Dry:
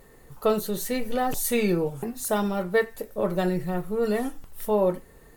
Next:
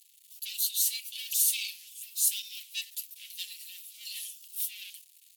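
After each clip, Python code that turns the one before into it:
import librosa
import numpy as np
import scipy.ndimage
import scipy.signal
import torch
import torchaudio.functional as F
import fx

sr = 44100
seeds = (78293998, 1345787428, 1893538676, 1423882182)

y = fx.leveller(x, sr, passes=3)
y = scipy.signal.sosfilt(scipy.signal.butter(8, 2800.0, 'highpass', fs=sr, output='sos'), y)
y = fx.over_compress(y, sr, threshold_db=-20.0, ratio=-1.0)
y = y * librosa.db_to_amplitude(-3.0)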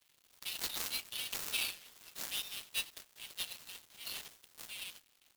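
y = fx.dead_time(x, sr, dead_ms=0.073)
y = y * librosa.db_to_amplitude(2.5)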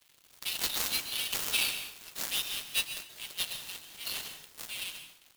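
y = fx.rev_plate(x, sr, seeds[0], rt60_s=0.56, hf_ratio=0.85, predelay_ms=115, drr_db=8.5)
y = y * librosa.db_to_amplitude(6.5)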